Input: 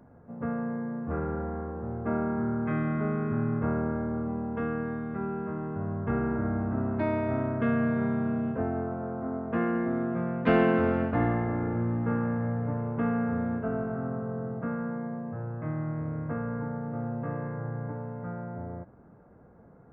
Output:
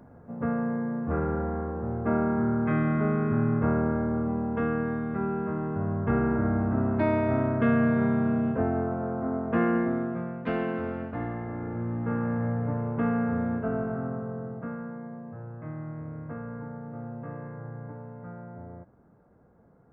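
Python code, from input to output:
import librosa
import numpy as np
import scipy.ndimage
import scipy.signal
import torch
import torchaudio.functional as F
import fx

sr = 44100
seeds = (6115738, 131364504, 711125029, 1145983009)

y = fx.gain(x, sr, db=fx.line((9.77, 3.5), (10.52, -7.0), (11.32, -7.0), (12.42, 1.5), (13.9, 1.5), (14.93, -5.0)))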